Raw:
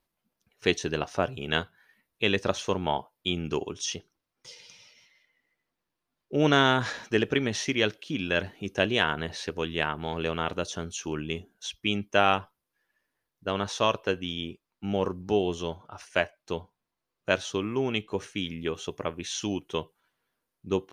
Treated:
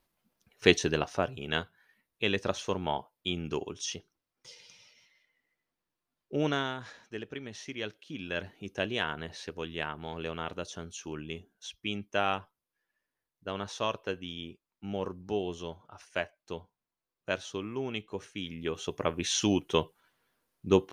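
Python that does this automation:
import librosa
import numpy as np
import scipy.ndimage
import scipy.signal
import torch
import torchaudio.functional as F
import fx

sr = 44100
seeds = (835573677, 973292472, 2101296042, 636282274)

y = fx.gain(x, sr, db=fx.line((0.75, 3.0), (1.31, -4.0), (6.35, -4.0), (6.77, -15.0), (7.39, -15.0), (8.49, -7.0), (18.34, -7.0), (19.25, 4.0)))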